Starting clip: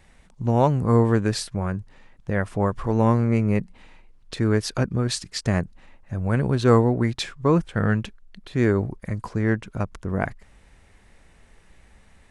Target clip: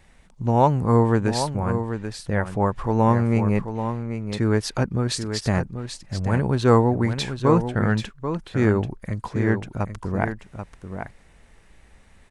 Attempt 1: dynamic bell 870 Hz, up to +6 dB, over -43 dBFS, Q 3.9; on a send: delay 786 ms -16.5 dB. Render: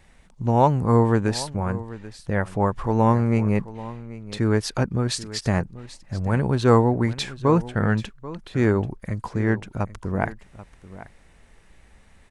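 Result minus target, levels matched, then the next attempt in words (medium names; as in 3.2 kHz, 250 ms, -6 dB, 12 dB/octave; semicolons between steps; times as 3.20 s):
echo-to-direct -8 dB
dynamic bell 870 Hz, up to +6 dB, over -43 dBFS, Q 3.9; on a send: delay 786 ms -8.5 dB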